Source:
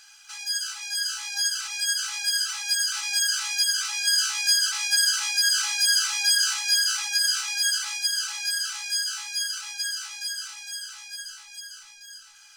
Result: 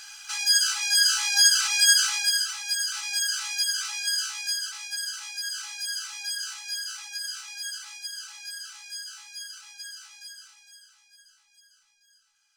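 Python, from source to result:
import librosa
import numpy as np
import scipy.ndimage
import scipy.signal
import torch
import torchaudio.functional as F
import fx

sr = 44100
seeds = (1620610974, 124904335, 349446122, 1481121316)

y = fx.gain(x, sr, db=fx.line((1.95, 7.5), (2.56, -3.0), (3.88, -3.0), (4.91, -11.0), (10.19, -11.0), (11.02, -19.0)))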